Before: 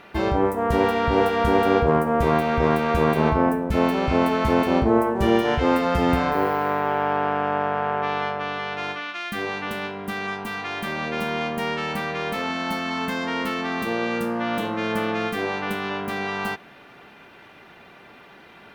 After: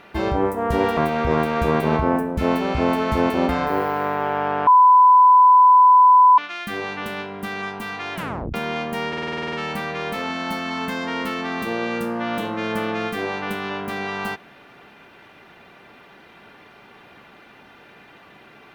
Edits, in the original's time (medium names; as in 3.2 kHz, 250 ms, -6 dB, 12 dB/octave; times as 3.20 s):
0.97–2.30 s: delete
4.82–6.14 s: delete
7.32–9.03 s: bleep 1 kHz -8 dBFS
10.80 s: tape stop 0.39 s
11.73 s: stutter 0.05 s, 10 plays